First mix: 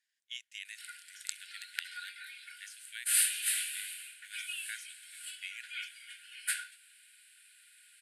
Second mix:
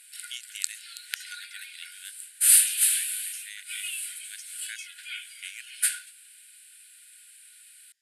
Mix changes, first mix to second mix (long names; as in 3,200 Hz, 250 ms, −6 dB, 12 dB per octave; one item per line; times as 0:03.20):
background: entry −0.65 s
master: add high-shelf EQ 4,100 Hz +12 dB